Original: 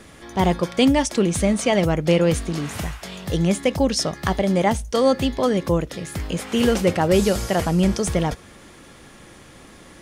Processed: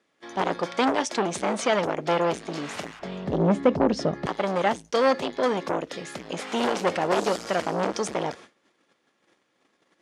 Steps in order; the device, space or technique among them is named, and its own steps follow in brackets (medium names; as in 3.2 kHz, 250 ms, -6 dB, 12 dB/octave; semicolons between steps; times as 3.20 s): public-address speaker with an overloaded transformer (transformer saturation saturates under 1.1 kHz; band-pass 290–6100 Hz); 6.44–7.44 s: treble shelf 10 kHz +6 dB; gate -44 dBFS, range -23 dB; 2.99–4.26 s: tilt EQ -4.5 dB/octave